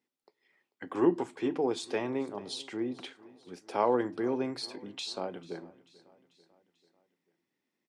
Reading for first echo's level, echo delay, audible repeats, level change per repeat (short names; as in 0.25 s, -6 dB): -21.5 dB, 0.441 s, 3, -5.0 dB